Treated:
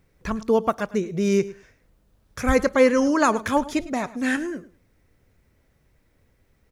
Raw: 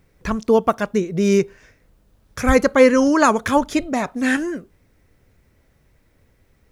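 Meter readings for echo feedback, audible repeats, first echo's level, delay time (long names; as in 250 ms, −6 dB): 16%, 2, −18.0 dB, 106 ms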